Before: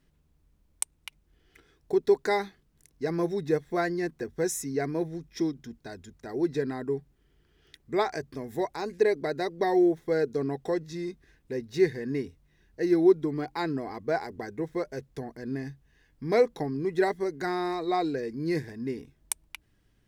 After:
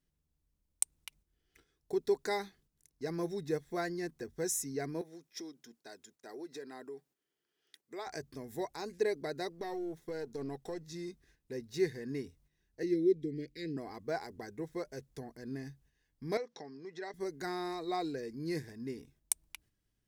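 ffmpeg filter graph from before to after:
-filter_complex "[0:a]asettb=1/sr,asplit=3[s0][s1][s2];[s0]atrim=end=5.014[s3];[s1]atrim=start=5.01:end=8.07,asetpts=PTS-STARTPTS,afade=t=in:d=0.004:c=qsin,afade=t=out:st=3.056:d=0.004:c=qsin,acompressor=threshold=0.0251:ratio=2.5:attack=3.2:release=140:knee=1:detection=peak,highpass=360[s4];[s2]atrim=start=8.066[s5];[s3][s4]acrossfade=d=0.004:c1=hsin:c2=qsin[s6];[s6][s5]acrossfade=d=0.004:c1=qsin:c2=hsin,asettb=1/sr,asplit=3[s7][s8][s9];[s7]atrim=end=9.524[s10];[s8]atrim=start=9.52:end=10.87,asetpts=PTS-STARTPTS,afade=t=in:d=0.004:c=qsin,afade=t=out:st=1.346:d=0.004:c=qsin,aeval=exprs='if(lt(val(0),0),0.708*val(0),val(0))':c=same,acompressor=threshold=0.0501:ratio=10:attack=3.2:release=140:knee=1:detection=peak[s11];[s9]atrim=start=10.866[s12];[s10][s11]acrossfade=d=0.004:c1=hsin:c2=qsin[s13];[s13][s12]acrossfade=d=0.004:c1=qsin:c2=hsin,asettb=1/sr,asplit=3[s14][s15][s16];[s14]atrim=end=12.834[s17];[s15]atrim=start=12.83:end=13.77,asetpts=PTS-STARTPTS,afade=t=in:d=0.004:c=qsin,afade=t=out:st=0.936:d=0.004:c=qsin,asuperstop=centerf=990:order=12:qfactor=0.78,highshelf=f=6300:g=-12[s18];[s16]atrim=start=13.766[s19];[s17][s18]acrossfade=d=0.004:c1=hsin:c2=qsin[s20];[s20][s19]acrossfade=d=0.004:c1=qsin:c2=hsin,asettb=1/sr,asplit=3[s21][s22][s23];[s21]atrim=end=16.374[s24];[s22]atrim=start=16.37:end=17.14,asetpts=PTS-STARTPTS,afade=t=in:d=0.004:c=qsin,afade=t=out:st=0.766:d=0.004:c=qsin,acompressor=threshold=0.0158:ratio=2:attack=3.2:release=140:knee=1:detection=peak,highpass=260,equalizer=f=310:t=q:w=4:g=-5,equalizer=f=1800:t=q:w=4:g=4,equalizer=f=5500:t=q:w=4:g=5,lowpass=f=6200:w=0.5412,lowpass=f=6200:w=1.3066[s25];[s23]atrim=start=17.136[s26];[s24][s25]acrossfade=d=0.004:c1=hsin:c2=qsin[s27];[s27][s26]acrossfade=d=0.004:c1=qsin:c2=hsin,agate=range=0.447:threshold=0.00126:ratio=16:detection=peak,bass=f=250:g=1,treble=f=4000:g=8,volume=0.376"

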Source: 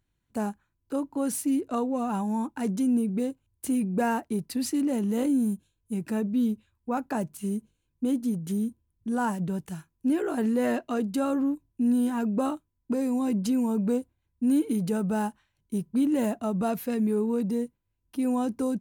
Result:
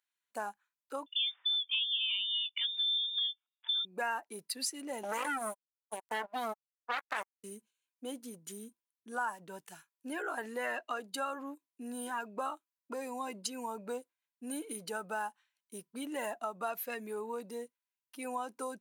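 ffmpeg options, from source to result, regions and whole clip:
-filter_complex "[0:a]asettb=1/sr,asplit=3[s0][s1][s2];[s0]atrim=end=1.064[s3];[s1]atrim=start=1.06:end=3.85,asetpts=PTS-STARTPTS,afade=t=in:d=0.004:c=qsin,afade=t=out:st=2.786:d=0.004:c=qsin,highpass=350,lowpass=f=3200:t=q:w=0.5098,lowpass=f=3200:t=q:w=0.6013,lowpass=f=3200:t=q:w=0.9,lowpass=f=3200:t=q:w=2.563,afreqshift=-3800[s4];[s2]atrim=start=3.846[s5];[s3][s4]acrossfade=d=0.004:c1=hsin:c2=qsin[s6];[s6][s5]acrossfade=d=0.004:c1=qsin:c2=hsin,asettb=1/sr,asplit=3[s7][s8][s9];[s7]atrim=end=5.034[s10];[s8]atrim=start=5.03:end=7.44,asetpts=PTS-STARTPTS,afade=t=in:d=0.004:c=qsin,afade=t=out:st=2.406:d=0.004:c=qsin,asplit=2[s11][s12];[s12]adelay=14,volume=0.237[s13];[s11][s13]amix=inputs=2:normalize=0,atrim=end_sample=106281,acrusher=bits=3:mix=0:aa=0.5[s14];[s9]atrim=start=7.436[s15];[s10][s14]acrossfade=d=0.004:c1=hsin:c2=qsin[s16];[s16][s15]acrossfade=d=0.004:c1=qsin:c2=hsin,afftdn=nr=12:nf=-39,highpass=1200,acompressor=threshold=0.00708:ratio=2.5,volume=2.51"

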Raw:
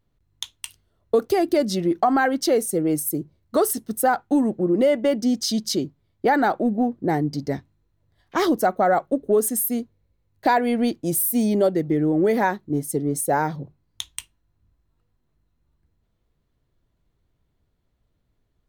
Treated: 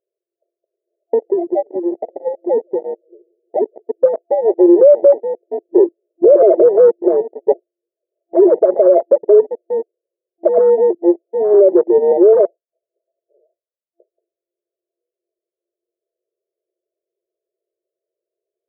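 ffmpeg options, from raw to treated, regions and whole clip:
-filter_complex "[0:a]asettb=1/sr,asplit=3[s0][s1][s2];[s0]atrim=end=0.554[s3];[s1]atrim=start=0.55:end=3.83,asetpts=PTS-STARTPTS,afade=t=in:d=0.004:c=qsin,afade=t=out:st=3.276:d=0.004:c=qsin,acompressor=threshold=0.0126:ratio=2:attack=3.2:release=140:knee=1:detection=peak,asplit=2[s4][s5];[s5]adelay=174,lowpass=f=1800:p=1,volume=0.0891,asplit=2[s6][s7];[s7]adelay=174,lowpass=f=1800:p=1,volume=0.51,asplit=2[s8][s9];[s9]adelay=174,lowpass=f=1800:p=1,volume=0.51,asplit=2[s10][s11];[s11]adelay=174,lowpass=f=1800:p=1,volume=0.51[s12];[s4][s6][s8][s10][s12]amix=inputs=5:normalize=0,atrim=end_sample=144648[s13];[s2]atrim=start=3.826[s14];[s3][s13]acrossfade=d=0.004:c1=hsin:c2=qsin[s15];[s15][s14]acrossfade=d=0.004:c1=qsin:c2=hsin,asettb=1/sr,asplit=3[s16][s17][s18];[s16]atrim=end=5.784[s19];[s17]atrim=start=5.78:end=6.91,asetpts=PTS-STARTPTS,afade=t=in:d=0.004:c=qsin,afade=t=out:st=1.126:d=0.004:c=qsin,highpass=59,tiltshelf=f=880:g=6,acontrast=45[s20];[s18]atrim=start=6.906[s21];[s19][s20]acrossfade=d=0.004:c1=hsin:c2=qsin[s22];[s22][s21]acrossfade=d=0.004:c1=qsin:c2=hsin,asettb=1/sr,asplit=3[s23][s24][s25];[s23]atrim=end=8.404[s26];[s24]atrim=start=8.4:end=8.8,asetpts=PTS-STARTPTS,afade=t=in:d=0.004:c=qsin,afade=t=out:st=0.396:d=0.004:c=qsin,aeval=exprs='val(0)+0.5*0.0335*sgn(val(0))':c=same,asuperstop=centerf=1300:order=12:qfactor=6.3,bass=f=250:g=-14,treble=f=4000:g=-7[s27];[s25]atrim=start=8.796[s28];[s26][s27]acrossfade=d=0.004:c1=hsin:c2=qsin[s29];[s29][s28]acrossfade=d=0.004:c1=qsin:c2=hsin,asettb=1/sr,asplit=3[s30][s31][s32];[s30]atrim=end=12.454[s33];[s31]atrim=start=12.45:end=14.11,asetpts=PTS-STARTPTS,afade=t=in:d=0.004:c=qsin,afade=t=out:st=1.656:d=0.004:c=qsin,lowpass=f=2600:t=q:w=0.5098,lowpass=f=2600:t=q:w=0.6013,lowpass=f=2600:t=q:w=0.9,lowpass=f=2600:t=q:w=2.563,afreqshift=-3100,asoftclip=type=hard:threshold=0.158[s34];[s32]atrim=start=14.106[s35];[s33][s34]acrossfade=d=0.004:c1=hsin:c2=qsin[s36];[s36][s35]acrossfade=d=0.004:c1=qsin:c2=hsin,afftfilt=real='re*between(b*sr/4096,340,680)':imag='im*between(b*sr/4096,340,680)':win_size=4096:overlap=0.75,afwtdn=0.0251,alimiter=level_in=7.94:limit=0.891:release=50:level=0:latency=1,volume=0.891"

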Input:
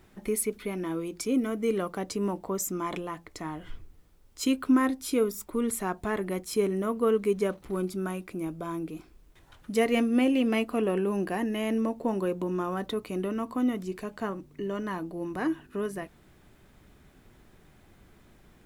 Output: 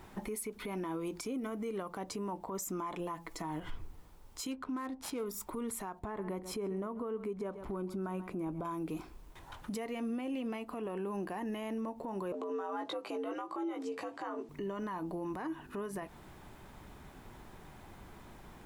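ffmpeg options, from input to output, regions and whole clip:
-filter_complex "[0:a]asettb=1/sr,asplit=3[s0][s1][s2];[s0]atrim=end=2.994[s3];[s1]atrim=start=2.99:end=3.6,asetpts=PTS-STARTPTS,afade=t=in:d=0.004:c=qsin,afade=t=out:st=0.606:d=0.004:c=qsin,highshelf=f=6700:g=5.5,aecho=1:1:6.1:0.95,atrim=end_sample=26901[s4];[s2]atrim=start=3.596[s5];[s3][s4]acrossfade=d=0.004:c1=hsin:c2=qsin[s6];[s6][s5]acrossfade=d=0.004:c1=qsin:c2=hsin,asettb=1/sr,asplit=3[s7][s8][s9];[s7]atrim=end=4.514[s10];[s8]atrim=start=4.51:end=5.26,asetpts=PTS-STARTPTS,afade=t=in:d=0.004:c=qsin,afade=t=out:st=0.746:d=0.004:c=qsin,aemphasis=mode=production:type=50kf,adynamicsmooth=sensitivity=6:basefreq=1700[s11];[s9]atrim=start=5.256[s12];[s10][s11]acrossfade=d=0.004:c1=hsin:c2=qsin[s13];[s13][s12]acrossfade=d=0.004:c1=qsin:c2=hsin,asettb=1/sr,asplit=3[s14][s15][s16];[s14]atrim=end=5.994[s17];[s15]atrim=start=5.99:end=8.65,asetpts=PTS-STARTPTS,afade=t=in:d=0.004:c=qsin,afade=t=out:st=2.656:d=0.004:c=qsin,highshelf=f=2100:g=-11,aecho=1:1:134:0.112,atrim=end_sample=117306[s18];[s16]atrim=start=8.646[s19];[s17][s18]acrossfade=d=0.004:c1=hsin:c2=qsin[s20];[s20][s19]acrossfade=d=0.004:c1=qsin:c2=hsin,asettb=1/sr,asplit=3[s21][s22][s23];[s21]atrim=end=12.324[s24];[s22]atrim=start=12.32:end=14.49,asetpts=PTS-STARTPTS,afade=t=in:d=0.004:c=qsin,afade=t=out:st=2.166:d=0.004:c=qsin,afreqshift=84,highpass=240,lowpass=7700,asplit=2[s25][s26];[s26]adelay=18,volume=0.596[s27];[s25][s27]amix=inputs=2:normalize=0,atrim=end_sample=95697[s28];[s23]atrim=start=14.486[s29];[s24][s28]acrossfade=d=0.004:c1=hsin:c2=qsin[s30];[s30][s29]acrossfade=d=0.004:c1=qsin:c2=hsin,equalizer=f=920:w=2.1:g=9,acompressor=threshold=0.02:ratio=6,alimiter=level_in=3.16:limit=0.0631:level=0:latency=1:release=98,volume=0.316,volume=1.5"

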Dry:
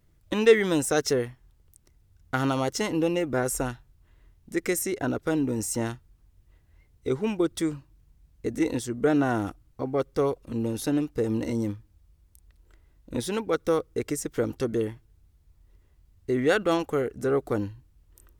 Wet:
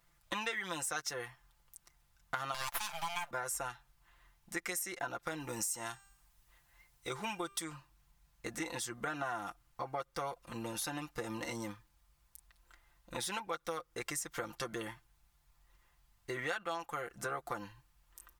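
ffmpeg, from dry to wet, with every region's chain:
-filter_complex "[0:a]asettb=1/sr,asplit=3[s0][s1][s2];[s0]atrim=end=2.544[s3];[s1]atrim=start=2.54:end=3.31,asetpts=PTS-STARTPTS,afade=t=in:d=0.004:c=qsin,afade=t=out:st=0.766:d=0.004:c=qsin,highpass=f=340:w=0.5412,highpass=f=340:w=1.3066,highshelf=f=2200:g=11.5,aeval=exprs='abs(val(0))':c=same[s4];[s2]atrim=start=3.306[s5];[s3][s4]acrossfade=d=0.004:c1=hsin:c2=qsin[s6];[s6][s5]acrossfade=d=0.004:c1=qsin:c2=hsin,asettb=1/sr,asplit=3[s7][s8][s9];[s7]atrim=end=5.404[s10];[s8]atrim=start=5.4:end=7.64,asetpts=PTS-STARTPTS,afade=t=in:d=0.004:c=qsin,afade=t=out:st=2.236:d=0.004:c=qsin,highshelf=f=4800:g=6.5,bandreject=f=395.9:t=h:w=4,bandreject=f=791.8:t=h:w=4,bandreject=f=1187.7:t=h:w=4,bandreject=f=1583.6:t=h:w=4,bandreject=f=1979.5:t=h:w=4,bandreject=f=2375.4:t=h:w=4,bandreject=f=2771.3:t=h:w=4,bandreject=f=3167.2:t=h:w=4,bandreject=f=3563.1:t=h:w=4,bandreject=f=3959:t=h:w=4,bandreject=f=4354.9:t=h:w=4,bandreject=f=4750.8:t=h:w=4,bandreject=f=5146.7:t=h:w=4,bandreject=f=5542.6:t=h:w=4,bandreject=f=5938.5:t=h:w=4,bandreject=f=6334.4:t=h:w=4,bandreject=f=6730.3:t=h:w=4,bandreject=f=7126.2:t=h:w=4,bandreject=f=7522.1:t=h:w=4,bandreject=f=7918:t=h:w=4,bandreject=f=8313.9:t=h:w=4,bandreject=f=8709.8:t=h:w=4[s11];[s9]atrim=start=7.636[s12];[s10][s11]acrossfade=d=0.004:c1=hsin:c2=qsin[s13];[s13][s12]acrossfade=d=0.004:c1=qsin:c2=hsin,lowshelf=f=590:t=q:w=1.5:g=-13,aecho=1:1:5.8:0.66,acompressor=threshold=0.0141:ratio=5,volume=1.12"

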